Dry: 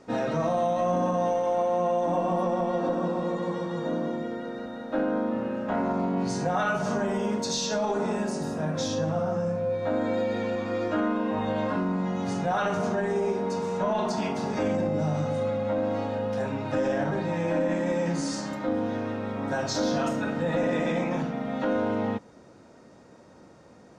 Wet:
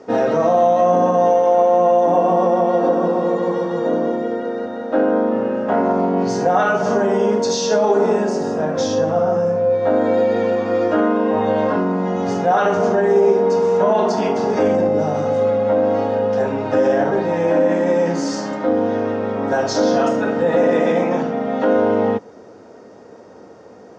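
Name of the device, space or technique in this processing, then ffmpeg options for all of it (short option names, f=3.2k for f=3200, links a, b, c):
car door speaker: -af "highpass=100,equalizer=f=150:t=q:w=4:g=-9,equalizer=f=440:t=q:w=4:g=9,equalizer=f=730:t=q:w=4:g=4,equalizer=f=2.4k:t=q:w=4:g=-4,equalizer=f=3.9k:t=q:w=4:g=-6,lowpass=f=6.6k:w=0.5412,lowpass=f=6.6k:w=1.3066,volume=8dB"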